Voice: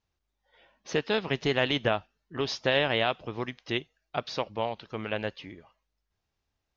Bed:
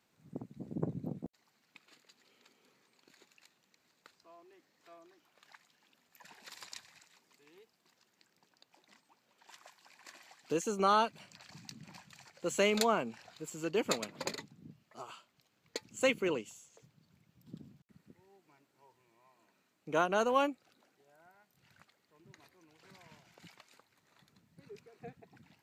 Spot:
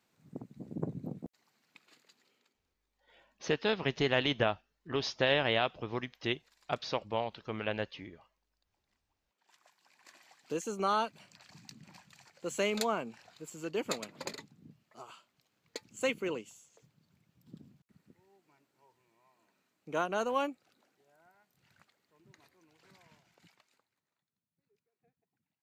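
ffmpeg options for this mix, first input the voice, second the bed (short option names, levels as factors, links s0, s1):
-filter_complex "[0:a]adelay=2550,volume=0.708[s0];[1:a]volume=5.96,afade=t=out:st=2.07:d=0.54:silence=0.125893,afade=t=in:st=9.21:d=1.14:silence=0.158489,afade=t=out:st=22.76:d=1.48:silence=0.0630957[s1];[s0][s1]amix=inputs=2:normalize=0"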